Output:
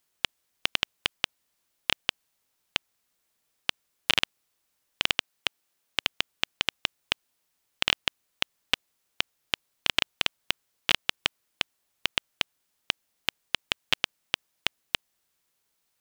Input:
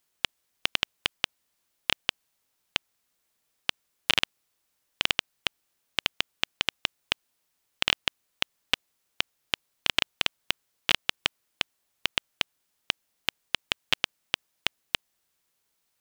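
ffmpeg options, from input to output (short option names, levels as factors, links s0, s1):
-filter_complex "[0:a]asettb=1/sr,asplit=3[s0][s1][s2];[s0]atrim=end=5.154[s3];[s1]atrim=start=5.15:end=6.09,asetpts=PTS-STARTPTS,afade=t=in:d=0.004:c=qsin,afade=t=out:st=0.936:d=0.004:c=qsin,highpass=f=160:p=1[s4];[s2]atrim=start=6.086[s5];[s3][s4]acrossfade=d=0.004:c1=hsin:c2=qsin[s6];[s6][s5]acrossfade=d=0.004:c1=qsin:c2=hsin"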